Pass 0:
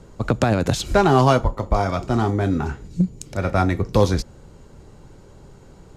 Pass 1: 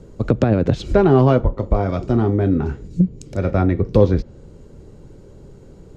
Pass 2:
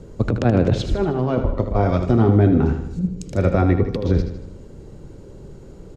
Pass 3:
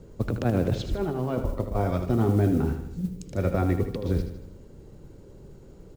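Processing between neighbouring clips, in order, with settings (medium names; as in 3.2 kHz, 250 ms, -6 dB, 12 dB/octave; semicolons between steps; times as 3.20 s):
resonant low shelf 630 Hz +6.5 dB, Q 1.5; low-pass that closes with the level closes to 2.8 kHz, closed at -9 dBFS; trim -3.5 dB
compressor with a negative ratio -16 dBFS, ratio -0.5; on a send: feedback delay 78 ms, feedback 51%, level -9 dB
modulation noise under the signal 31 dB; trim -7.5 dB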